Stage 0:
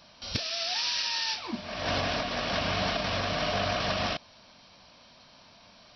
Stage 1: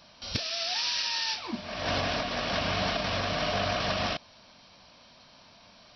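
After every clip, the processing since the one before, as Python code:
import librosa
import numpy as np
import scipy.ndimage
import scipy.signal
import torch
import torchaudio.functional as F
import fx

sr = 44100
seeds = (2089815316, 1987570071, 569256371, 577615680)

y = x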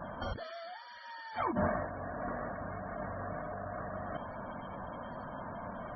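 y = fx.over_compress(x, sr, threshold_db=-42.0, ratio=-1.0)
y = scipy.signal.savgol_filter(y, 41, 4, mode='constant')
y = fx.spec_topn(y, sr, count=64)
y = y * 10.0 ** (6.0 / 20.0)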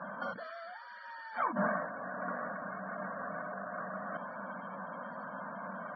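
y = fx.cabinet(x, sr, low_hz=180.0, low_slope=24, high_hz=4700.0, hz=(190.0, 370.0, 540.0, 1100.0, 1500.0, 3300.0), db=(8, -10, 5, 6, 10, -6))
y = y * 10.0 ** (-3.5 / 20.0)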